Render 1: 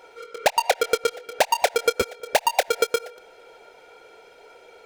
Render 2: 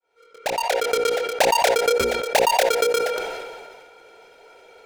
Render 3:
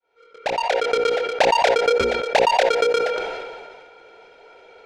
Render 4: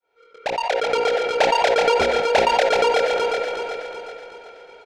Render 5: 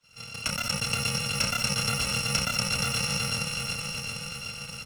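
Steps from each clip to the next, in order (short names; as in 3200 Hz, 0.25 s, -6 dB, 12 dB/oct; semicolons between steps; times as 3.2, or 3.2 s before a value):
opening faded in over 1.10 s; notches 60/120/180/240/300/360/420/480/540 Hz; sustainer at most 31 dB/s
LPF 4300 Hz 12 dB/oct; gain +1.5 dB
feedback echo 0.374 s, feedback 45%, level -4 dB; gain -1 dB
FFT order left unsorted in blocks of 128 samples; air absorption 98 m; three-band squash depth 70%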